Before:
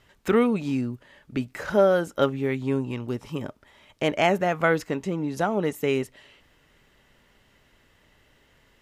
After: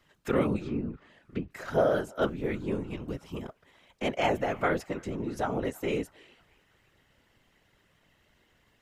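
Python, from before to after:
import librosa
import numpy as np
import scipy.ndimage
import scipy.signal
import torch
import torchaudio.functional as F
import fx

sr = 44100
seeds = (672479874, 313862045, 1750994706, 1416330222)

y = fx.echo_banded(x, sr, ms=320, feedback_pct=54, hz=1500.0, wet_db=-23)
y = fx.env_lowpass_down(y, sr, base_hz=1600.0, full_db=-22.5, at=(0.6, 1.51))
y = fx.whisperise(y, sr, seeds[0])
y = y * 10.0 ** (-6.0 / 20.0)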